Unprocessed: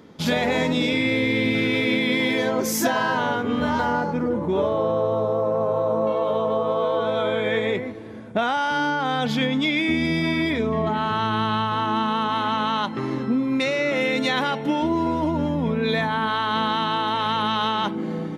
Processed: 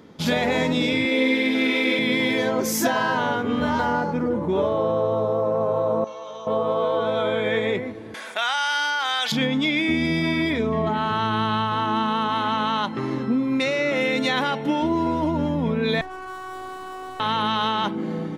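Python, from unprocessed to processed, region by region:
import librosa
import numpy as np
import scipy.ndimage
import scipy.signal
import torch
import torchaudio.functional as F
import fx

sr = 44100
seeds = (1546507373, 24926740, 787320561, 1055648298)

y = fx.chain(x, sr, fx.highpass(hz=240.0, slope=24),
    fx.room_flutter(wall_m=11.2, rt60_s=0.74), at=(1.05, 1.99))
y = fx.chain(y, sr, fx.ladder_lowpass(hz=6400.0, resonance_pct=85),
    fx.tilt_shelf(db=-7.0, hz=710.0), at=(6.04, 6.47))
y = fx.chain(y, sr, fx.highpass(hz=1100.0, slope=12),
    fx.high_shelf(hz=2600.0, db=10.0),
    fx.env_flatten(amount_pct=50), at=(8.14, 9.32))
y = fx.chain(y, sr, fx.tube_stage(drive_db=26.0, bias=0.6),
    fx.peak_eq(hz=3900.0, db=-13.5, octaves=1.7),
    fx.robotise(hz=373.0), at=(16.01, 17.2))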